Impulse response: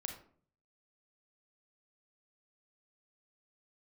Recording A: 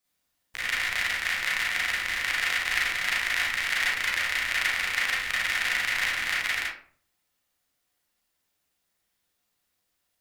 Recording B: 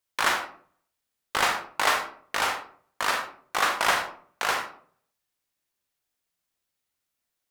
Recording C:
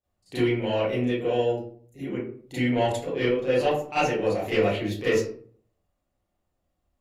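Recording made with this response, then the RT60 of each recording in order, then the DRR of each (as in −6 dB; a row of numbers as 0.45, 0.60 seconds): B; 0.50, 0.50, 0.50 seconds; −6.5, 3.5, −15.0 decibels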